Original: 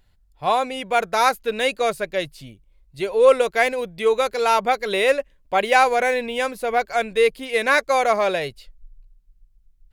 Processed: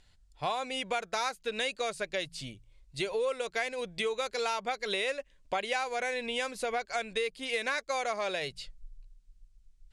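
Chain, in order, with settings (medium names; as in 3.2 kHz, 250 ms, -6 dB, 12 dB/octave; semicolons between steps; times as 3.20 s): low-pass 8.8 kHz 24 dB/octave; treble shelf 2.3 kHz +10 dB; de-hum 55.71 Hz, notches 3; compression 6:1, threshold -27 dBFS, peak gain reduction 17.5 dB; trim -3 dB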